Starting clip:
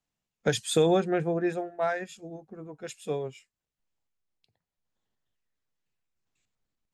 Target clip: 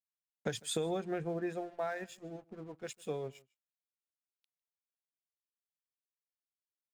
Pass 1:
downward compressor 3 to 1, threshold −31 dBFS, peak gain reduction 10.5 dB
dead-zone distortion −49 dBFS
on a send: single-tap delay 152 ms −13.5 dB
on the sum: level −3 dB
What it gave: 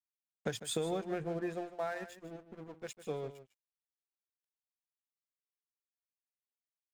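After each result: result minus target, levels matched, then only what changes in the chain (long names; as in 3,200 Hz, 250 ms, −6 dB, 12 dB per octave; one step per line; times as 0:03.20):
echo-to-direct +11.5 dB; dead-zone distortion: distortion +7 dB
change: single-tap delay 152 ms −25 dB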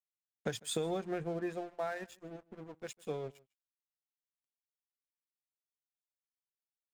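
dead-zone distortion: distortion +7 dB
change: dead-zone distortion −56.5 dBFS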